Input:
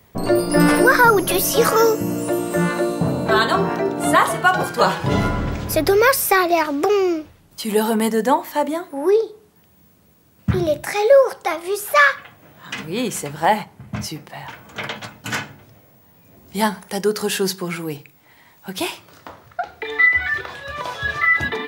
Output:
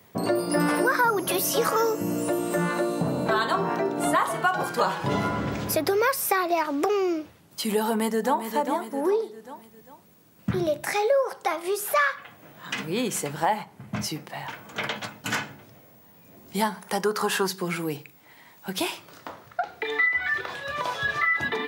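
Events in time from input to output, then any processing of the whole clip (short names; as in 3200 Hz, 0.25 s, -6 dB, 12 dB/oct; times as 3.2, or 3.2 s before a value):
7.84–8.44 echo throw 0.4 s, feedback 40%, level -8.5 dB
16.86–17.46 bell 1100 Hz +7 dB -> +14 dB 1.1 oct
whole clip: HPF 130 Hz 12 dB/oct; dynamic EQ 1000 Hz, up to +4 dB, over -27 dBFS, Q 1.5; compressor 2.5:1, threshold -23 dBFS; gain -1 dB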